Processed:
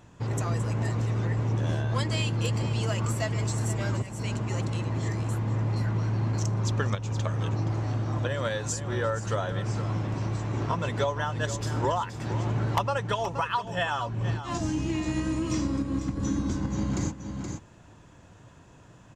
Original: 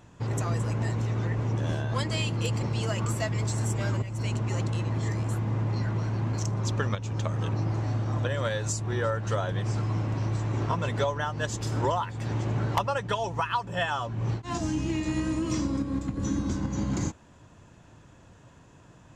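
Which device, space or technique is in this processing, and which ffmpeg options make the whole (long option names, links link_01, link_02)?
ducked delay: -filter_complex "[0:a]asplit=3[link_01][link_02][link_03];[link_02]adelay=473,volume=-6dB[link_04];[link_03]apad=whole_len=865551[link_05];[link_04][link_05]sidechaincompress=threshold=-31dB:ratio=8:attack=16:release=445[link_06];[link_01][link_06]amix=inputs=2:normalize=0"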